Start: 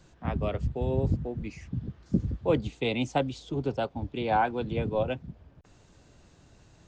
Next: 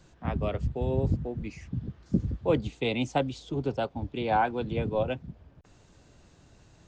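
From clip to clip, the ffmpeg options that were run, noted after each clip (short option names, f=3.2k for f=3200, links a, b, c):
-af anull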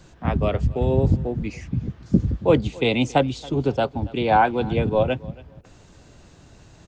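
-af "aecho=1:1:277|554:0.0794|0.0175,volume=8dB"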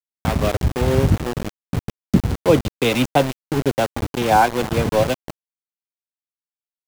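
-af "aeval=exprs='val(0)*gte(abs(val(0)),0.0708)':c=same,volume=2.5dB"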